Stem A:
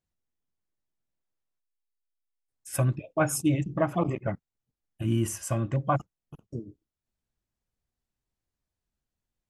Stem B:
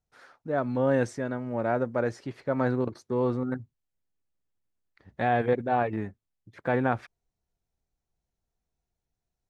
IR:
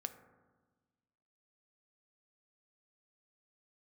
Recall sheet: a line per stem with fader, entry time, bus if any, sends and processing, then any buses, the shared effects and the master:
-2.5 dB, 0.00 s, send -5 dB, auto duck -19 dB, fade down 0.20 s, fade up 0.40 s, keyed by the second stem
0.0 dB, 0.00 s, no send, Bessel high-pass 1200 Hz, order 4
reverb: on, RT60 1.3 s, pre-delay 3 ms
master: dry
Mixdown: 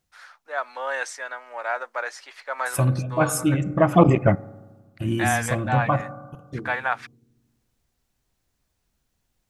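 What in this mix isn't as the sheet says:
stem A -2.5 dB -> +9.5 dB; stem B 0.0 dB -> +9.5 dB

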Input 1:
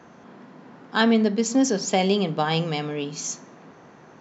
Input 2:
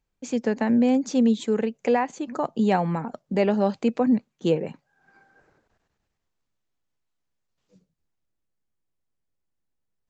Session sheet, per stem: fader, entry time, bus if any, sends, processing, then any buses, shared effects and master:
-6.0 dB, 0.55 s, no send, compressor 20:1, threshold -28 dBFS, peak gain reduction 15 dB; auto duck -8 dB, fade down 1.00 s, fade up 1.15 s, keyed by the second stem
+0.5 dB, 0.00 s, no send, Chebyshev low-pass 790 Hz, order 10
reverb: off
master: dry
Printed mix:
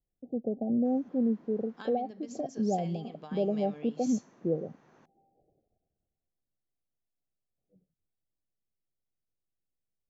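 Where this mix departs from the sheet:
stem 1: entry 0.55 s -> 0.85 s; stem 2 +0.5 dB -> -7.0 dB

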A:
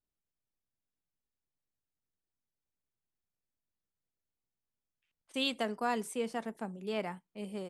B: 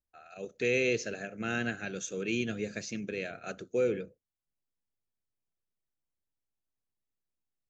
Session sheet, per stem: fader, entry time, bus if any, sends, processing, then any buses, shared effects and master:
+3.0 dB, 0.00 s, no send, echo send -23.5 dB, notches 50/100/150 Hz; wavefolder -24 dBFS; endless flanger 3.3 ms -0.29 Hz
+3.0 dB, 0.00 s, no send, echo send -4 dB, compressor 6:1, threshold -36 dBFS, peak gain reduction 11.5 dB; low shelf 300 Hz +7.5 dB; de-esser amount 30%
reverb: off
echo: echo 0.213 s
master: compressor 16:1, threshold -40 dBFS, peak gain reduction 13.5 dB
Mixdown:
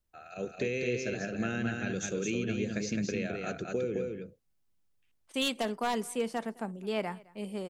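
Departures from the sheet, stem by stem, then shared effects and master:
stem A: missing endless flanger 3.3 ms -0.29 Hz; master: missing compressor 16:1, threshold -40 dBFS, peak gain reduction 13.5 dB

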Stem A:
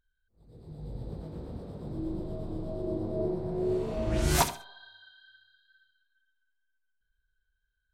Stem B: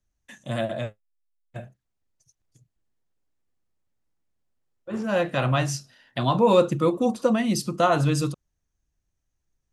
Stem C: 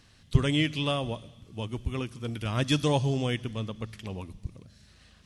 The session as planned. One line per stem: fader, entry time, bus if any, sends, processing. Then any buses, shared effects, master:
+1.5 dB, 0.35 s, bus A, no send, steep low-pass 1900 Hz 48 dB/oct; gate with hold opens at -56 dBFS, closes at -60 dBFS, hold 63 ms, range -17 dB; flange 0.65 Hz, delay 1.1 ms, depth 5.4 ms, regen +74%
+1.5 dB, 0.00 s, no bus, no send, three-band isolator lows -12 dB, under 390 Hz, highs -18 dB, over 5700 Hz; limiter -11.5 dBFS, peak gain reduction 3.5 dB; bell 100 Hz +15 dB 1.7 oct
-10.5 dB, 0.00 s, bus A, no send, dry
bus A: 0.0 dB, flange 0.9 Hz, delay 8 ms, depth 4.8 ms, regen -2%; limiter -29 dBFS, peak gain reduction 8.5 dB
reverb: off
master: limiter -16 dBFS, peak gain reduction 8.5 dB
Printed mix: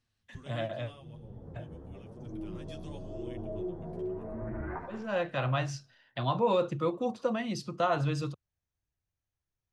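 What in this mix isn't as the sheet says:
stem B +1.5 dB -> -7.0 dB; stem C -10.5 dB -> -20.0 dB

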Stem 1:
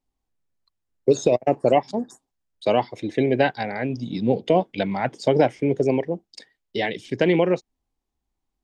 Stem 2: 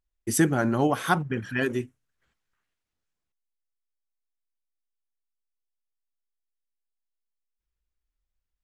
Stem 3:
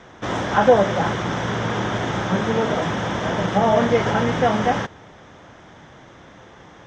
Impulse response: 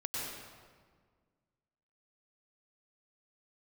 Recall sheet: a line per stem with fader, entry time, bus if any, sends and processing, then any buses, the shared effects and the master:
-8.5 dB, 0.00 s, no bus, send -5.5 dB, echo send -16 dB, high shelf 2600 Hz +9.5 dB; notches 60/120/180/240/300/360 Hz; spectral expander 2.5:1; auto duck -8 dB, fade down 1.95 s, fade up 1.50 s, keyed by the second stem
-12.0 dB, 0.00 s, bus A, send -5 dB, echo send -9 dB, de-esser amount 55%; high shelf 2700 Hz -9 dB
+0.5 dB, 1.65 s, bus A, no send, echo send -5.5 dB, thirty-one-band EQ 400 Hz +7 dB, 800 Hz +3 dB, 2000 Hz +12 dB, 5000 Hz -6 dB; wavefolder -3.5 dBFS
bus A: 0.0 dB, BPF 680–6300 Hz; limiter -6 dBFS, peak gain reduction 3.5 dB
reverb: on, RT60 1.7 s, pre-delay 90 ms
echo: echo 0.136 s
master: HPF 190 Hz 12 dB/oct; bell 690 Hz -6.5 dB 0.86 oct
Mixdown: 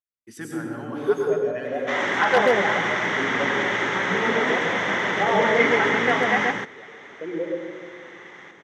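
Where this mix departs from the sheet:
stem 2: missing de-esser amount 55%; reverb return +7.5 dB

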